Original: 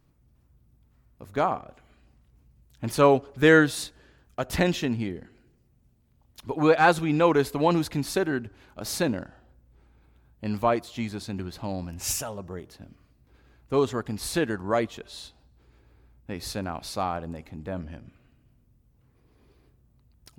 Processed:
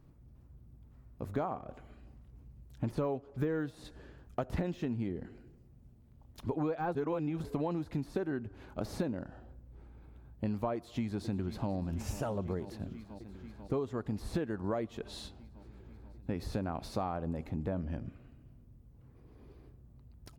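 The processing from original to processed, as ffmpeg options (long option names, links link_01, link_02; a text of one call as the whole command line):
ffmpeg -i in.wav -filter_complex "[0:a]asplit=2[link_01][link_02];[link_02]afade=type=in:start_time=10.75:duration=0.01,afade=type=out:start_time=11.71:duration=0.01,aecho=0:1:490|980|1470|1960|2450|2940|3430|3920|4410|4900|5390|5880:0.141254|0.113003|0.0904024|0.0723219|0.0578575|0.046286|0.0370288|0.0296231|0.0236984|0.0189588|0.015167|0.0121336[link_03];[link_01][link_03]amix=inputs=2:normalize=0,asplit=3[link_04][link_05][link_06];[link_04]atrim=end=6.952[link_07];[link_05]atrim=start=6.948:end=7.442,asetpts=PTS-STARTPTS,areverse[link_08];[link_06]atrim=start=7.438[link_09];[link_07][link_08]acrossfade=duration=0.004:curve1=hsin:curve2=hsin[link_10];[link_10][link_09]acrossfade=duration=0.004:curve1=hsin:curve2=hsin,deesser=0.95,tiltshelf=frequency=1300:gain=5.5,acompressor=threshold=-31dB:ratio=10" out.wav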